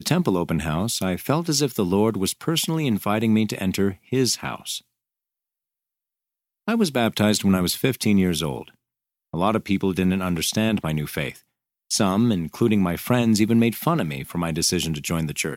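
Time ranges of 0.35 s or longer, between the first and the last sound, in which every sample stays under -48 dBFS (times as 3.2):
4.81–6.68
8.71–9.33
11.44–11.91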